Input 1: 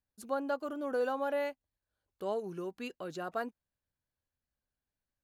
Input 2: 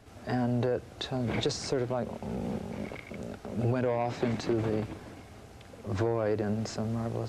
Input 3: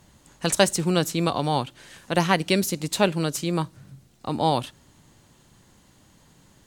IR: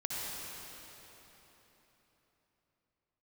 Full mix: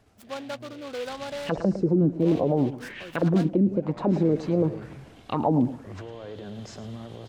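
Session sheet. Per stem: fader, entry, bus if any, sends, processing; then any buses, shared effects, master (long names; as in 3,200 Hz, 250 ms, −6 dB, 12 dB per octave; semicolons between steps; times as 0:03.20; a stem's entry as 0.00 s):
−1.5 dB, 0.00 s, no send, no echo send, short delay modulated by noise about 2,500 Hz, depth 0.083 ms
−4.5 dB, 0.00 s, no send, echo send −13.5 dB, brickwall limiter −26.5 dBFS, peak gain reduction 9.5 dB; automatic ducking −15 dB, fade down 0.25 s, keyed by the first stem
+1.0 dB, 1.05 s, no send, echo send −17 dB, envelope-controlled low-pass 260–3,600 Hz down, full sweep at −17.5 dBFS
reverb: not used
echo: repeating echo 108 ms, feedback 24%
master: brickwall limiter −13.5 dBFS, peak gain reduction 11.5 dB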